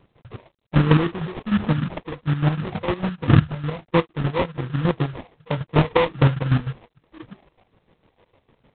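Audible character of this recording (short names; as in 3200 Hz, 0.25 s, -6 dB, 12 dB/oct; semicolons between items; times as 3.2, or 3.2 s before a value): phasing stages 12, 1.3 Hz, lowest notch 230–1400 Hz; chopped level 6.6 Hz, depth 65%, duty 40%; aliases and images of a low sample rate 1500 Hz, jitter 20%; G.726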